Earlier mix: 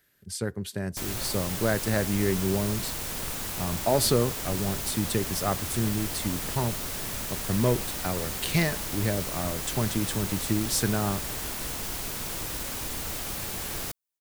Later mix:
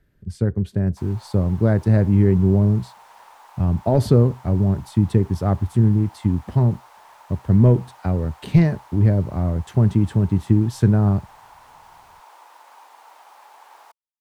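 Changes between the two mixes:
background: add four-pole ladder high-pass 820 Hz, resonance 70%
master: add spectral tilt −4.5 dB per octave

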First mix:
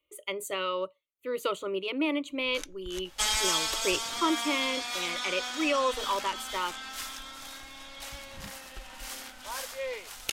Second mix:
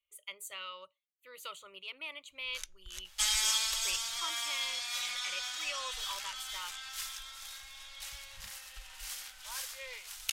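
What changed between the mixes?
speech −4.5 dB
master: add guitar amp tone stack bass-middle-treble 10-0-10

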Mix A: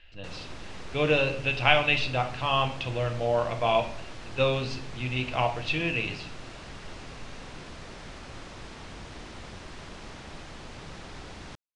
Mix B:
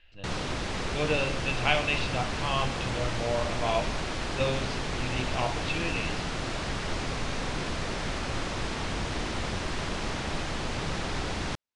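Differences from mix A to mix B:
speech −4.5 dB
background +11.0 dB

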